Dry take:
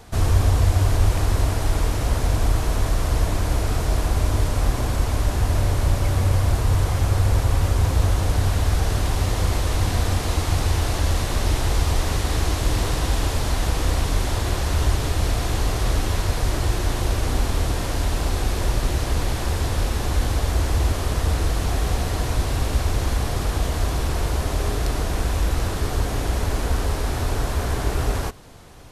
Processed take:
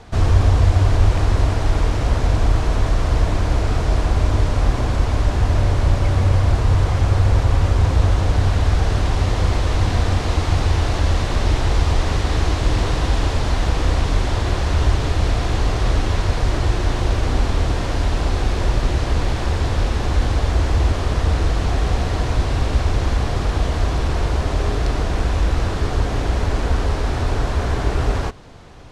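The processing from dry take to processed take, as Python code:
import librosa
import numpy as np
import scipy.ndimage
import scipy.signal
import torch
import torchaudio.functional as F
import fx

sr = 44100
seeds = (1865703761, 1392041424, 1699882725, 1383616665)

y = fx.air_absorb(x, sr, metres=88.0)
y = F.gain(torch.from_numpy(y), 3.5).numpy()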